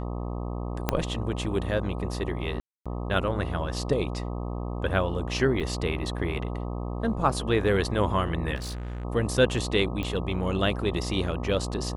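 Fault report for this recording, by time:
mains buzz 60 Hz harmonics 21 −32 dBFS
0:00.89: click −8 dBFS
0:02.60–0:02.86: drop-out 256 ms
0:05.60–0:05.61: drop-out 6.2 ms
0:08.55–0:09.05: clipping −31 dBFS
0:10.03: click −19 dBFS

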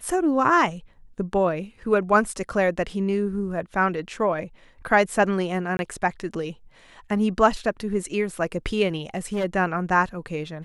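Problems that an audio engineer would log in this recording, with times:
0:05.77–0:05.79: drop-out 21 ms
0:09.01–0:09.45: clipping −21.5 dBFS

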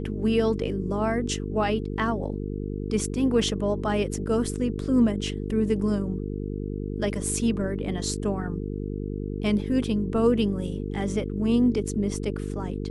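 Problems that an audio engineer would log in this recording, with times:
mains buzz 50 Hz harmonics 9 −31 dBFS

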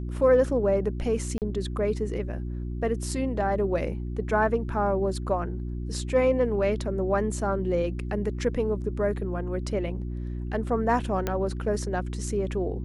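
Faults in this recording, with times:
mains hum 60 Hz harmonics 6 −32 dBFS
0:01.38–0:01.42: drop-out 38 ms
0:11.27: click −13 dBFS

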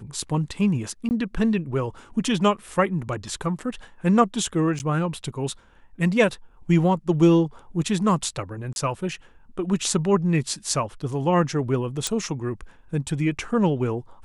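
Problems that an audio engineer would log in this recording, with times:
0:01.09–0:01.11: drop-out 19 ms
0:04.79–0:04.80: drop-out 9.5 ms
0:08.73–0:08.76: drop-out 31 ms
0:12.07: click

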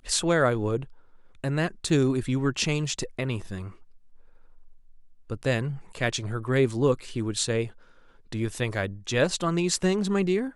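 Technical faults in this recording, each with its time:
0:01.89: drop-out 2.3 ms

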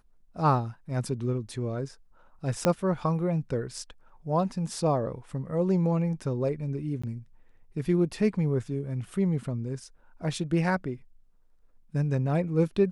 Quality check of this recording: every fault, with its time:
0:02.65: click −9 dBFS
0:07.02–0:07.04: drop-out 15 ms

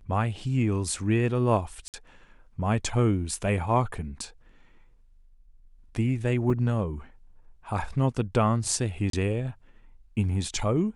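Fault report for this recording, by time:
0:01.88–0:01.94: drop-out 58 ms
0:06.50: drop-out 3.3 ms
0:09.10–0:09.13: drop-out 33 ms

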